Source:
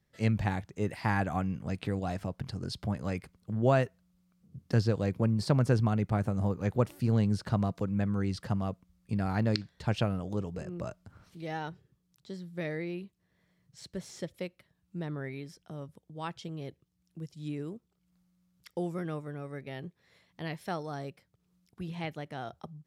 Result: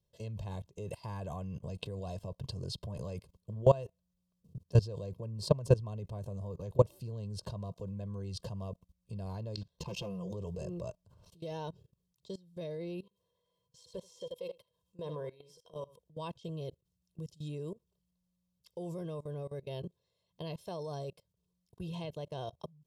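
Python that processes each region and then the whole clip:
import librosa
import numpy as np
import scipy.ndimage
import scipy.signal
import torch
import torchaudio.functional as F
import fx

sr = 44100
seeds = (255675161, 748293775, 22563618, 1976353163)

y = fx.chain(x, sr, fx.comb(ms=5.8, depth=0.79),
    fx.clip_hard(threshold_db=-24.0),
    fx.ripple_eq(per_octave=0.79, db=7), at=(9.78, 10.32))
y = fx.chain(y, sr, fx.low_shelf(hz=360.0, db=-9.0),
    fx.small_body(hz=(490.0, 1000.0, 3200.0), ring_ms=75, db=14),
    fx.echo_single(ms=80, db=-12.0), at=(13.03, 15.99))
y = fx.band_shelf(y, sr, hz=1700.0, db=-15.5, octaves=1.1)
y = y + 0.71 * np.pad(y, (int(1.9 * sr / 1000.0), 0))[:len(y)]
y = fx.level_steps(y, sr, step_db=21)
y = y * librosa.db_to_amplitude(2.5)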